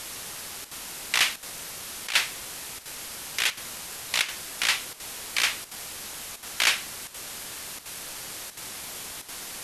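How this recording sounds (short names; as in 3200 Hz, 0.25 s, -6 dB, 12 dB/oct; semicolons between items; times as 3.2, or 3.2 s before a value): a quantiser's noise floor 6-bit, dither triangular; chopped level 1.4 Hz, depth 65%, duty 90%; MP2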